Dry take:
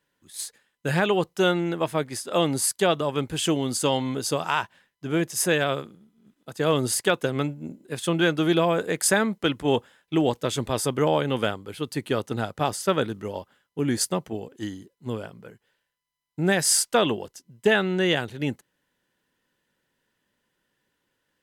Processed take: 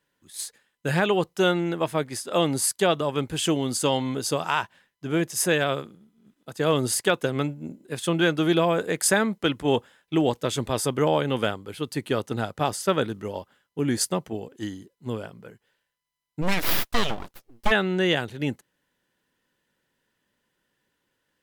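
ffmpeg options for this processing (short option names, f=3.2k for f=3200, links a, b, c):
-filter_complex "[0:a]asplit=3[a][b][c];[a]afade=t=out:st=16.41:d=0.02[d];[b]aeval=exprs='abs(val(0))':c=same,afade=t=in:st=16.41:d=0.02,afade=t=out:st=17.7:d=0.02[e];[c]afade=t=in:st=17.7:d=0.02[f];[d][e][f]amix=inputs=3:normalize=0"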